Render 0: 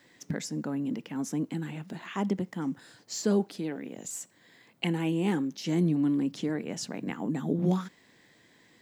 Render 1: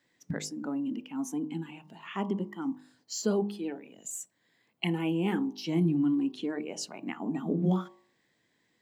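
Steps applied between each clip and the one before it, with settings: spectral noise reduction 12 dB; de-hum 50.95 Hz, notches 23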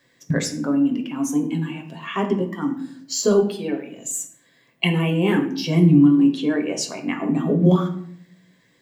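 reverberation RT60 0.60 s, pre-delay 7 ms, DRR 3.5 dB; trim +9 dB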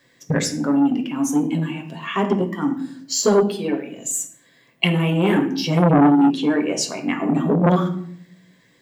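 transformer saturation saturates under 710 Hz; trim +3 dB

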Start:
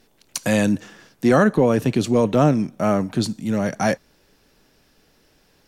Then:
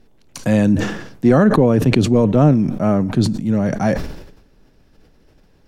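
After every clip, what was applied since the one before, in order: tilt EQ -2.5 dB/octave; decay stretcher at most 66 dB/s; trim -1 dB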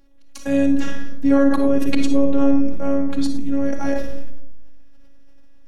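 robot voice 278 Hz; algorithmic reverb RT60 0.67 s, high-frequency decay 0.25×, pre-delay 15 ms, DRR 5 dB; trim -3.5 dB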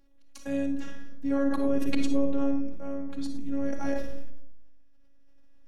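tremolo 0.51 Hz, depth 54%; trim -8 dB

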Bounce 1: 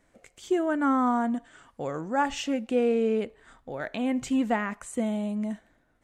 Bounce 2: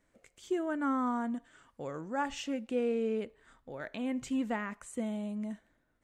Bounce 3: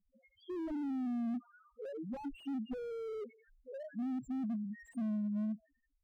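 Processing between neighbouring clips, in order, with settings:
peaking EQ 740 Hz -5 dB 0.26 oct; trim -7 dB
feedback echo behind a high-pass 83 ms, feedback 68%, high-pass 2.2 kHz, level -6 dB; loudest bins only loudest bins 1; slew-rate limiter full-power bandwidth 2 Hz; trim +7 dB

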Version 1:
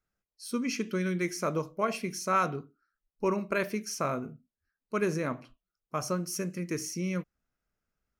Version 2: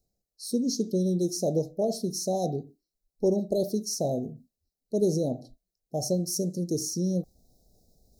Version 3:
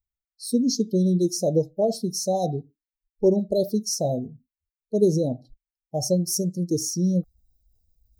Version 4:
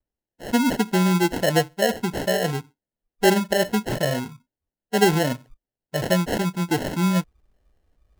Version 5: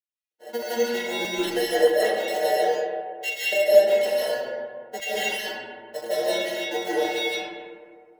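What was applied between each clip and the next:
Chebyshev band-stop 770–3900 Hz, order 5; reverse; upward compressor, threshold -52 dBFS; reverse; trim +5.5 dB
expander on every frequency bin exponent 1.5; trim +7 dB
sample-and-hold 37×; trim +1.5 dB
inharmonic resonator 110 Hz, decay 0.34 s, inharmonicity 0.008; LFO high-pass square 1.6 Hz 490–2500 Hz; reverberation RT60 2.0 s, pre-delay 115 ms, DRR -9 dB

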